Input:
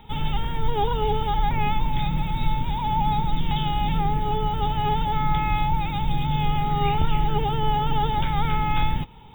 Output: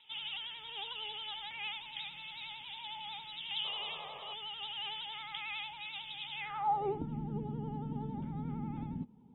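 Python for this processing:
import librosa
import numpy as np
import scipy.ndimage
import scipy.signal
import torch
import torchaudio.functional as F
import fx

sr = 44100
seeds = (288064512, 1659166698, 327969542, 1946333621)

y = fx.filter_sweep_bandpass(x, sr, from_hz=3000.0, to_hz=230.0, start_s=6.33, end_s=7.07, q=4.5)
y = fx.spec_paint(y, sr, seeds[0], shape='noise', start_s=3.64, length_s=0.7, low_hz=390.0, high_hz=1300.0, level_db=-51.0)
y = fx.vibrato(y, sr, rate_hz=11.0, depth_cents=75.0)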